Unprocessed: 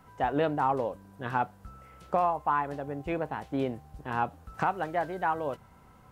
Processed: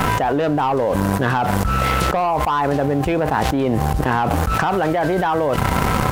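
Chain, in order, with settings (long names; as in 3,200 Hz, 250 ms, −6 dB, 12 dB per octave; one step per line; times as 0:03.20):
leveller curve on the samples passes 2
envelope flattener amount 100%
level +1 dB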